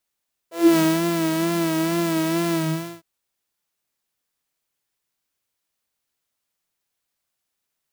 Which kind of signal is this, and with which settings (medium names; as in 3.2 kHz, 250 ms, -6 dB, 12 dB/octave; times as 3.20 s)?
synth patch with vibrato E4, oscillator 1 saw, detune 28 cents, oscillator 2 level -16 dB, sub -15 dB, noise -11 dB, filter highpass, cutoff 100 Hz, Q 6.6, filter envelope 2.5 oct, attack 264 ms, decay 0.24 s, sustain -5 dB, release 0.48 s, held 2.03 s, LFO 2.2 Hz, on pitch 54 cents